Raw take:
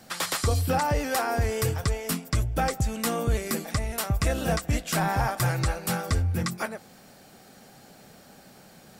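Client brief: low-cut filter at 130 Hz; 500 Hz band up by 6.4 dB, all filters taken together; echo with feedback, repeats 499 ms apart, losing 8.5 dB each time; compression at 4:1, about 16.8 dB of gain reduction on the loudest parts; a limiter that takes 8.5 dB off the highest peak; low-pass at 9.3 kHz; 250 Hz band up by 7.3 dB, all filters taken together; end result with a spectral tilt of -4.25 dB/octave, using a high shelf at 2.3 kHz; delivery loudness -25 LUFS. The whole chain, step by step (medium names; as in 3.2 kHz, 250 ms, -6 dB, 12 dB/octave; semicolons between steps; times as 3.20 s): high-pass 130 Hz; low-pass 9.3 kHz; peaking EQ 250 Hz +9 dB; peaking EQ 500 Hz +5 dB; treble shelf 2.3 kHz +6.5 dB; compression 4:1, threshold -38 dBFS; peak limiter -30 dBFS; feedback delay 499 ms, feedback 38%, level -8.5 dB; trim +15.5 dB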